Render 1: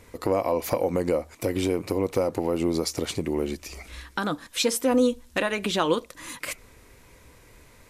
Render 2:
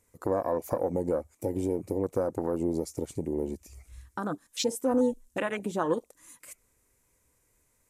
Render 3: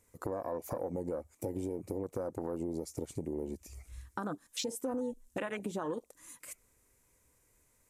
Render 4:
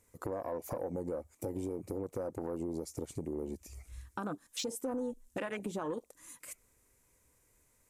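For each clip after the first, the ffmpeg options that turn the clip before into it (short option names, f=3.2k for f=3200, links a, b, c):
-af "afwtdn=0.0398,highshelf=f=5.6k:t=q:w=1.5:g=9.5,volume=-4dB"
-af "alimiter=limit=-19.5dB:level=0:latency=1:release=33,acompressor=threshold=-35dB:ratio=3"
-af "asoftclip=type=tanh:threshold=-25dB"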